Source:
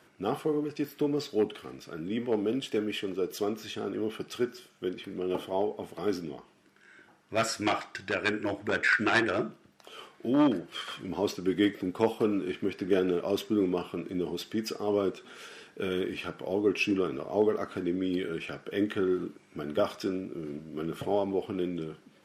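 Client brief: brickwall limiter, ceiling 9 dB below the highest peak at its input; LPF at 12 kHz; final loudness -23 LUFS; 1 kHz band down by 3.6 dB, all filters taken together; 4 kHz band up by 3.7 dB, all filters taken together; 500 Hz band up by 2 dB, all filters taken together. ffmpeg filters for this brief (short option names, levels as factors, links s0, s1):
-af "lowpass=12000,equalizer=f=500:t=o:g=4,equalizer=f=1000:t=o:g=-7.5,equalizer=f=4000:t=o:g=5.5,volume=2.51,alimiter=limit=0.316:level=0:latency=1"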